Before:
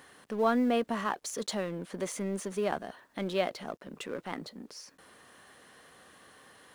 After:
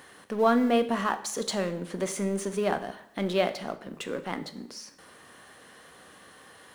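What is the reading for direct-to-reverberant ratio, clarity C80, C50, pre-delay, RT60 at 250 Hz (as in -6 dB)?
10.0 dB, 16.5 dB, 13.5 dB, 5 ms, 0.65 s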